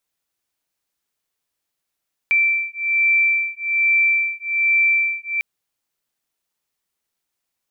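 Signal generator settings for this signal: beating tones 2340 Hz, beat 1.2 Hz, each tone -18.5 dBFS 3.10 s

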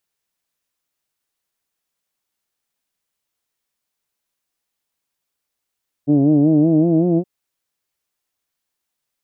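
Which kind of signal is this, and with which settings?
formant vowel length 1.17 s, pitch 140 Hz, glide +4 st, F1 300 Hz, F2 650 Hz, F3 2600 Hz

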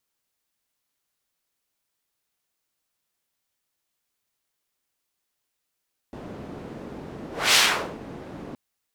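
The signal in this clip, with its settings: whoosh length 2.42 s, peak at 1.42, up 0.26 s, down 0.45 s, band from 300 Hz, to 3700 Hz, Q 0.84, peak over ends 21.5 dB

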